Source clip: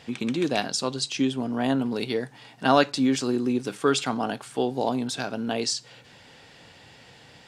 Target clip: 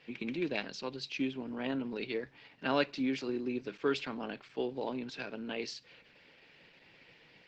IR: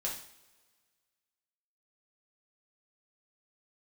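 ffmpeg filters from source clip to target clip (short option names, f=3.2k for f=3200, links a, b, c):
-af "highpass=f=150:w=0.5412,highpass=f=150:w=1.3066,equalizer=f=240:t=q:w=4:g=-4,equalizer=f=730:t=q:w=4:g=-9,equalizer=f=1.2k:t=q:w=4:g=-6,equalizer=f=2.4k:t=q:w=4:g=7,equalizer=f=3.5k:t=q:w=4:g=-4,lowpass=f=4.5k:w=0.5412,lowpass=f=4.5k:w=1.3066,volume=-7.5dB" -ar 48000 -c:a libopus -b:a 12k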